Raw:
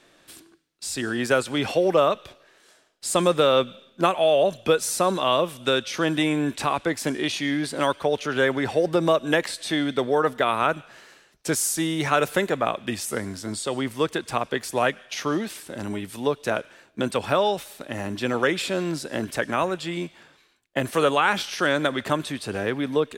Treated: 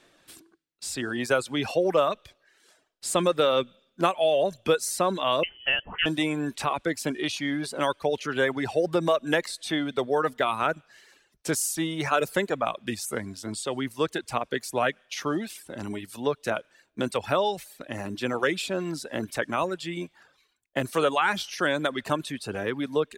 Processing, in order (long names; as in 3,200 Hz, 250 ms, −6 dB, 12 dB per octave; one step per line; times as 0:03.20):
0:05.43–0:06.06: voice inversion scrambler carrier 3,200 Hz
reverb reduction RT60 0.67 s
level −2.5 dB